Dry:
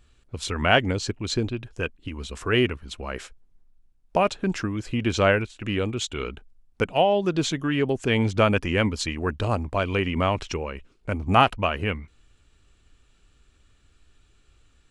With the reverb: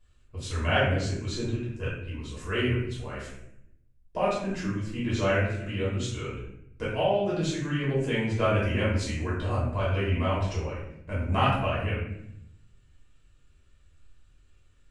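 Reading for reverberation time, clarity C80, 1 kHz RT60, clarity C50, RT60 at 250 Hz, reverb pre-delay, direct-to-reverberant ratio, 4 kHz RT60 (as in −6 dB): 0.75 s, 5.0 dB, 0.65 s, 1.5 dB, 1.1 s, 3 ms, −8.5 dB, 0.50 s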